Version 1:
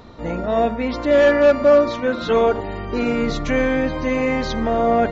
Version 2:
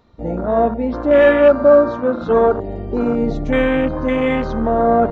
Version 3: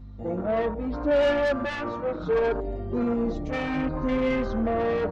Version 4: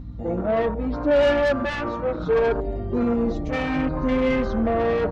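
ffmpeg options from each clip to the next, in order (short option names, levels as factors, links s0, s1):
-af "afwtdn=0.0631,volume=1.41"
-filter_complex "[0:a]asoftclip=type=tanh:threshold=0.188,aeval=exprs='val(0)+0.0178*(sin(2*PI*50*n/s)+sin(2*PI*2*50*n/s)/2+sin(2*PI*3*50*n/s)/3+sin(2*PI*4*50*n/s)/4+sin(2*PI*5*50*n/s)/5)':c=same,asplit=2[s0][s1];[s1]adelay=5.3,afreqshift=-0.7[s2];[s0][s2]amix=inputs=2:normalize=1,volume=0.708"
-af "aeval=exprs='val(0)+0.01*(sin(2*PI*60*n/s)+sin(2*PI*2*60*n/s)/2+sin(2*PI*3*60*n/s)/3+sin(2*PI*4*60*n/s)/4+sin(2*PI*5*60*n/s)/5)':c=same,volume=1.5"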